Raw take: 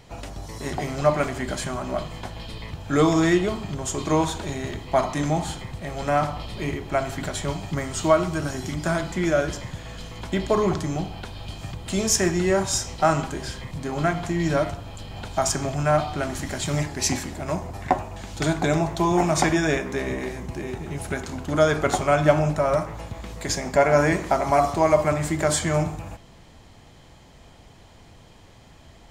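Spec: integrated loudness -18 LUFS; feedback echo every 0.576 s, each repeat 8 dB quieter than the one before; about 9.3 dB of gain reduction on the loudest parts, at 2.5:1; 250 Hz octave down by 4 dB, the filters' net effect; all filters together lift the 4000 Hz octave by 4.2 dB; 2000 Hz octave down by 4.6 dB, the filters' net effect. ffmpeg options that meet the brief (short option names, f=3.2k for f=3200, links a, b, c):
-af "equalizer=f=250:t=o:g=-6.5,equalizer=f=2k:t=o:g=-7.5,equalizer=f=4k:t=o:g=7.5,acompressor=threshold=-28dB:ratio=2.5,aecho=1:1:576|1152|1728|2304|2880:0.398|0.159|0.0637|0.0255|0.0102,volume=12.5dB"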